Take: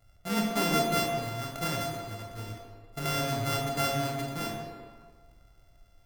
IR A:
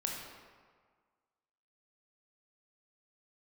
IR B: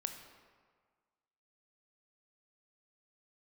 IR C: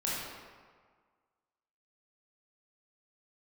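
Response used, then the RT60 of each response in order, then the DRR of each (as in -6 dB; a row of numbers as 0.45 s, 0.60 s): A; 1.6 s, 1.6 s, 1.7 s; -1.0 dB, 6.0 dB, -7.0 dB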